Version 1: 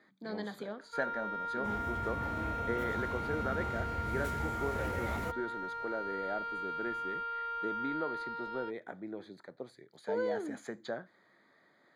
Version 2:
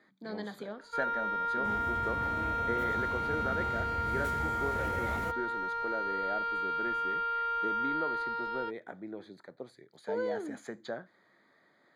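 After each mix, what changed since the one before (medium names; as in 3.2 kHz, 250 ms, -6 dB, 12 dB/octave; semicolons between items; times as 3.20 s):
first sound +5.5 dB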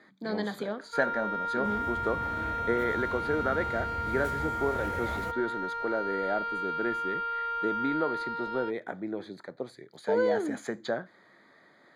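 speech +7.5 dB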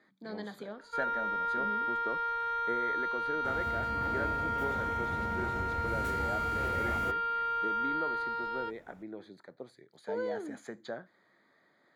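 speech -9.0 dB; second sound: entry +1.80 s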